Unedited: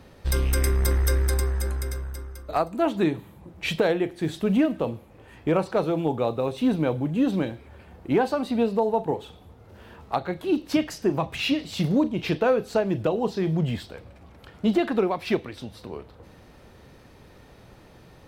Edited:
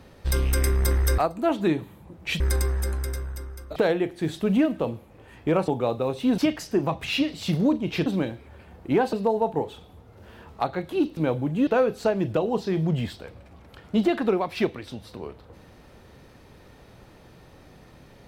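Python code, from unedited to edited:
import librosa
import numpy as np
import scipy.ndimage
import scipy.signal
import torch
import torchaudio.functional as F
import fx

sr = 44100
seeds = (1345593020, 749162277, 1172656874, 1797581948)

y = fx.edit(x, sr, fx.move(start_s=2.54, length_s=1.22, to_s=1.18),
    fx.cut(start_s=5.68, length_s=0.38),
    fx.swap(start_s=6.76, length_s=0.5, other_s=10.69, other_length_s=1.68),
    fx.cut(start_s=8.33, length_s=0.32), tone=tone)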